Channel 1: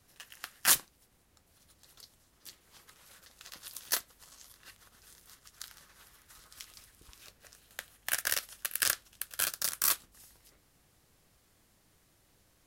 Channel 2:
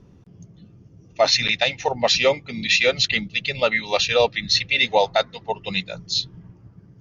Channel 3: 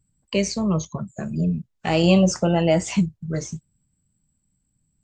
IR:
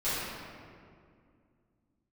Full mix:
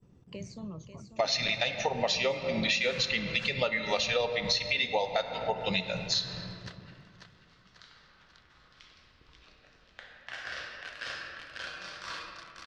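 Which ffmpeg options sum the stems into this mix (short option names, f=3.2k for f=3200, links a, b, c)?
-filter_complex "[0:a]lowpass=f=4.4k:w=0.5412,lowpass=f=4.4k:w=1.3066,adelay=2200,volume=-5dB,asplit=3[a][b][c];[b]volume=-7.5dB[d];[c]volume=-6.5dB[e];[1:a]agate=range=-33dB:threshold=-42dB:ratio=3:detection=peak,volume=-1dB,asplit=2[f][g];[g]volume=-18dB[h];[2:a]acompressor=threshold=-18dB:ratio=6,volume=-13dB,asplit=2[i][j];[j]volume=-17dB[k];[a][i]amix=inputs=2:normalize=0,highshelf=f=5.3k:g=-8.5,acompressor=threshold=-51dB:ratio=1.5,volume=0dB[l];[3:a]atrim=start_sample=2205[m];[d][h]amix=inputs=2:normalize=0[n];[n][m]afir=irnorm=-1:irlink=0[o];[e][k]amix=inputs=2:normalize=0,aecho=0:1:542|1084|1626|2168|2710|3252|3794:1|0.48|0.23|0.111|0.0531|0.0255|0.0122[p];[f][l][o][p]amix=inputs=4:normalize=0,acompressor=threshold=-26dB:ratio=6"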